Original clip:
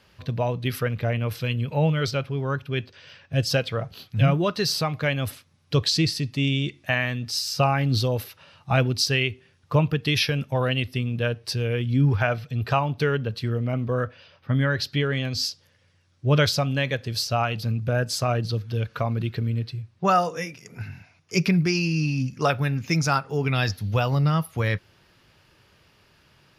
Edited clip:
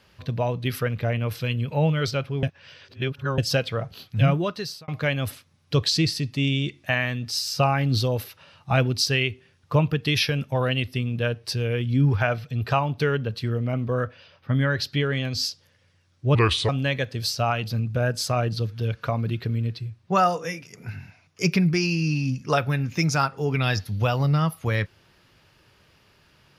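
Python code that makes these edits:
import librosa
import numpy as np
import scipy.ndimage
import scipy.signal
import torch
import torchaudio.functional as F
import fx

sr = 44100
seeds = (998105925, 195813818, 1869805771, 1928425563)

y = fx.edit(x, sr, fx.reverse_span(start_s=2.43, length_s=0.95),
    fx.fade_out_span(start_s=4.3, length_s=0.58),
    fx.speed_span(start_s=16.35, length_s=0.26, speed=0.77), tone=tone)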